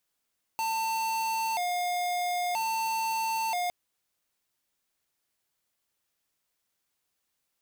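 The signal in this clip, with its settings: siren hi-lo 712–896 Hz 0.51/s square -29.5 dBFS 3.11 s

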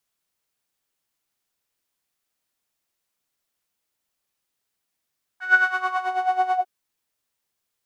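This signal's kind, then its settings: synth patch with tremolo F#5, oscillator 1 saw, oscillator 2 saw, interval -12 st, detune 16 cents, oscillator 2 level -8.5 dB, noise -16.5 dB, filter bandpass, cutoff 580 Hz, Q 10, filter envelope 1.5 oct, filter decay 0.82 s, filter sustain 40%, attack 0.194 s, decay 0.06 s, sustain -4 dB, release 0.10 s, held 1.15 s, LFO 9.2 Hz, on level 12 dB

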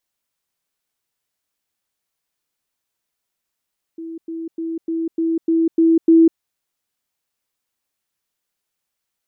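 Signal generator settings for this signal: level ladder 328 Hz -28 dBFS, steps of 3 dB, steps 8, 0.20 s 0.10 s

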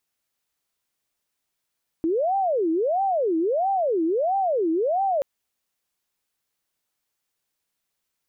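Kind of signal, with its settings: siren wail 320–788 Hz 1.5/s sine -19.5 dBFS 3.18 s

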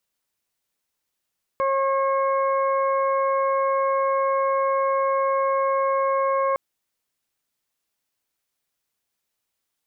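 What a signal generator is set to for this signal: steady additive tone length 4.96 s, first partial 542 Hz, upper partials -0.5/-17/-16 dB, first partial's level -21.5 dB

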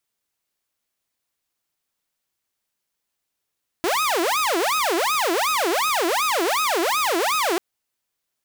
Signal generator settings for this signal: siren wail 328–1270 Hz 2.7/s saw -16.5 dBFS 3.74 s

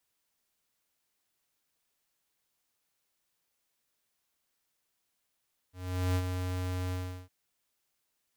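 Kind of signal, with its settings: ADSR square 91.3 Hz, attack 0.425 s, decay 61 ms, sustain -6 dB, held 1.19 s, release 0.366 s -27.5 dBFS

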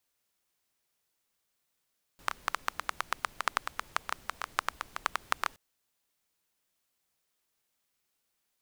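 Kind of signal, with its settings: rain from filtered ticks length 3.37 s, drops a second 9, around 1200 Hz, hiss -19 dB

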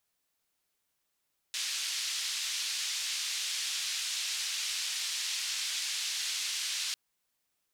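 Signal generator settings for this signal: noise band 3000–5300 Hz, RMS -34.5 dBFS 5.40 s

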